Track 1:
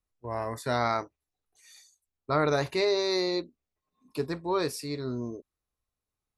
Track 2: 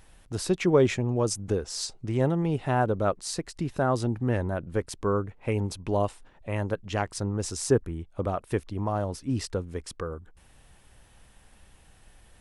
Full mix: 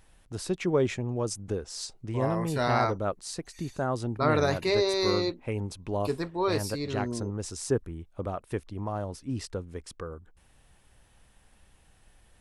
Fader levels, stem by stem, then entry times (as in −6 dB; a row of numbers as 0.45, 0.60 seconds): +0.5, −4.5 decibels; 1.90, 0.00 seconds